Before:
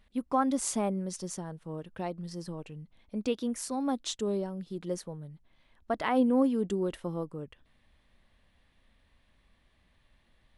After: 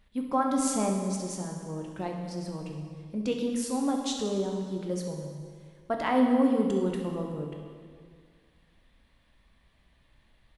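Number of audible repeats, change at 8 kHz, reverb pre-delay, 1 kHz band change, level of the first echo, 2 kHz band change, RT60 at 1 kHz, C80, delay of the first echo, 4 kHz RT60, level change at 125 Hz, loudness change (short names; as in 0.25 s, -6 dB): 1, +2.0 dB, 9 ms, +2.5 dB, -12.0 dB, +2.0 dB, 1.9 s, 5.0 dB, 67 ms, 1.7 s, +4.0 dB, +2.5 dB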